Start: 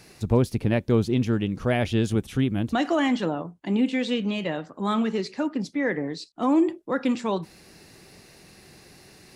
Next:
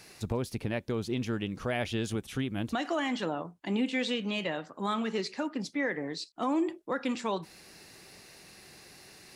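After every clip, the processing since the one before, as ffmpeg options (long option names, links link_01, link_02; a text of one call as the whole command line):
ffmpeg -i in.wav -af "lowshelf=frequency=470:gain=-8,alimiter=limit=-21dB:level=0:latency=1:release=243" out.wav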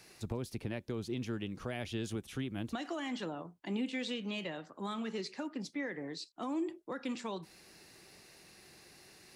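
ffmpeg -i in.wav -filter_complex "[0:a]equalizer=frequency=350:width_type=o:width=0.23:gain=3,acrossover=split=290|3000[link_01][link_02][link_03];[link_02]acompressor=threshold=-36dB:ratio=2[link_04];[link_01][link_04][link_03]amix=inputs=3:normalize=0,volume=-5.5dB" out.wav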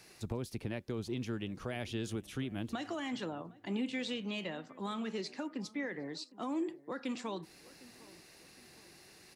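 ffmpeg -i in.wav -filter_complex "[0:a]asplit=2[link_01][link_02];[link_02]adelay=758,lowpass=frequency=1300:poles=1,volume=-20dB,asplit=2[link_03][link_04];[link_04]adelay=758,lowpass=frequency=1300:poles=1,volume=0.44,asplit=2[link_05][link_06];[link_06]adelay=758,lowpass=frequency=1300:poles=1,volume=0.44[link_07];[link_01][link_03][link_05][link_07]amix=inputs=4:normalize=0" out.wav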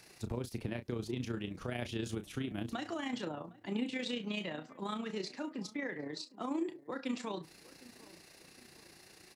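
ffmpeg -i in.wav -filter_complex "[0:a]tremolo=f=29:d=0.519,asplit=2[link_01][link_02];[link_02]adelay=33,volume=-10dB[link_03];[link_01][link_03]amix=inputs=2:normalize=0,volume=2dB" out.wav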